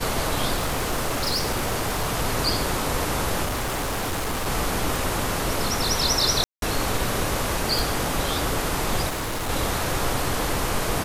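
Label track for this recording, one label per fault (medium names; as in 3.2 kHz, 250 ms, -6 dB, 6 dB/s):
0.550000	2.100000	clipped -20 dBFS
3.440000	4.480000	clipped -23 dBFS
4.960000	4.960000	pop
6.440000	6.620000	dropout 182 ms
7.790000	7.790000	pop
9.080000	9.500000	clipped -25 dBFS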